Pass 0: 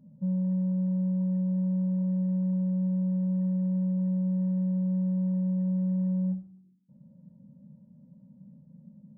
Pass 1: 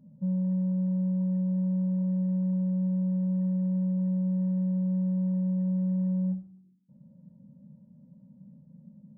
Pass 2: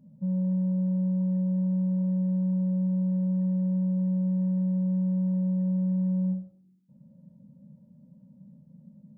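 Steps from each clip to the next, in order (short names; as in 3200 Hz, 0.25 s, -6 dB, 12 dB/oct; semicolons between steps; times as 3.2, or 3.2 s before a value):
nothing audible
on a send at -6.5 dB: band-pass 480 Hz, Q 1.1 + reverb RT60 0.40 s, pre-delay 30 ms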